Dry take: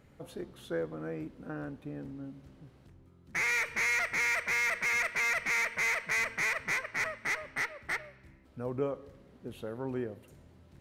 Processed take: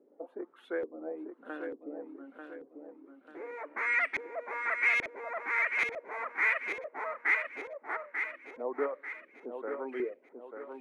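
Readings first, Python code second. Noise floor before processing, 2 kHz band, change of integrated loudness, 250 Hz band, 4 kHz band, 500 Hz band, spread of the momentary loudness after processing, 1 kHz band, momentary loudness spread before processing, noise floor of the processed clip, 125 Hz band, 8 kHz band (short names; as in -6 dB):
-60 dBFS, -1.0 dB, -1.5 dB, -2.5 dB, -10.0 dB, +1.5 dB, 19 LU, +1.0 dB, 16 LU, -64 dBFS, under -20 dB, under -20 dB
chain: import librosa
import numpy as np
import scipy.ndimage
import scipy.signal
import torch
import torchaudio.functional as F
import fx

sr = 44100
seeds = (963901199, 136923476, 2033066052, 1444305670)

y = fx.dereverb_blind(x, sr, rt60_s=1.0)
y = scipy.signal.sosfilt(scipy.signal.butter(6, 280.0, 'highpass', fs=sr, output='sos'), y)
y = fx.high_shelf_res(y, sr, hz=7700.0, db=12.0, q=1.5)
y = fx.filter_lfo_lowpass(y, sr, shape='saw_up', hz=1.2, low_hz=380.0, high_hz=3400.0, q=2.0)
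y = fx.echo_feedback(y, sr, ms=891, feedback_pct=42, wet_db=-6.5)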